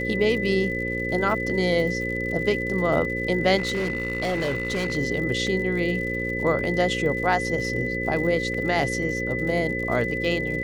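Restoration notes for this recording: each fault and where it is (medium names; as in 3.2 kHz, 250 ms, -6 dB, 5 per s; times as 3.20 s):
buzz 60 Hz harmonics 9 -30 dBFS
crackle 96 per s -33 dBFS
whine 2 kHz -28 dBFS
3.57–4.97 s: clipped -21.5 dBFS
5.47 s: dropout 2 ms
8.54 s: dropout 3.9 ms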